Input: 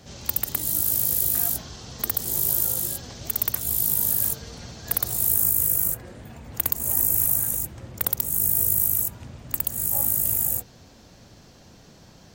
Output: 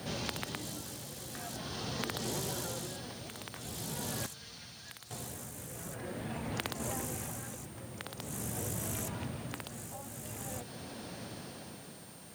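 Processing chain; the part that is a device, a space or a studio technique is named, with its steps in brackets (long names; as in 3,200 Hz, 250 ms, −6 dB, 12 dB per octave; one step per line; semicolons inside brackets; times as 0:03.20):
medium wave at night (band-pass filter 130–4,400 Hz; downward compressor, threshold −40 dBFS, peak gain reduction 10 dB; amplitude tremolo 0.45 Hz, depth 66%; steady tone 9,000 Hz −64 dBFS; white noise bed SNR 18 dB)
0:04.26–0:05.11: guitar amp tone stack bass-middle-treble 5-5-5
level +7.5 dB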